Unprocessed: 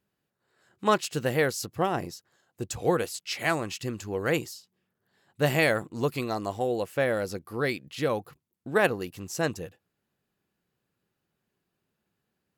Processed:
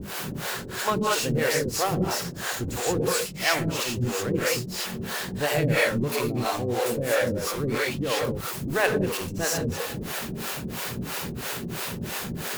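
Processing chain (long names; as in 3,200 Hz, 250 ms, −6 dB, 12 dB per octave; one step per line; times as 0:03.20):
converter with a step at zero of −25.5 dBFS
reverb whose tail is shaped and stops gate 210 ms rising, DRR −2 dB
two-band tremolo in antiphase 3 Hz, depth 100%, crossover 430 Hz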